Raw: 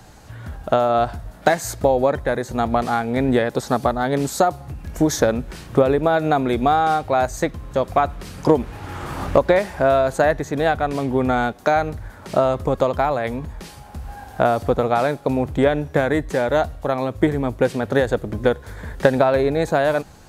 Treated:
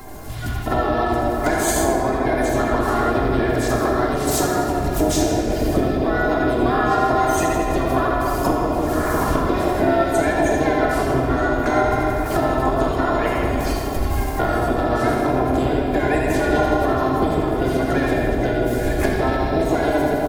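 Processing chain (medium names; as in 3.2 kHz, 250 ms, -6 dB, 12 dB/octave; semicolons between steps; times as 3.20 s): coarse spectral quantiser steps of 30 dB; on a send: two-band feedback delay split 800 Hz, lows 148 ms, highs 81 ms, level -6 dB; on the sum: compression 16:1, threshold -25 dBFS, peak gain reduction 16.5 dB; simulated room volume 210 m³, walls hard, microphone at 0.57 m; harmony voices -12 st -7 dB, +5 st -7 dB; treble shelf 7 kHz +9.5 dB; comb 2.9 ms, depth 51%; trim +3.5 dB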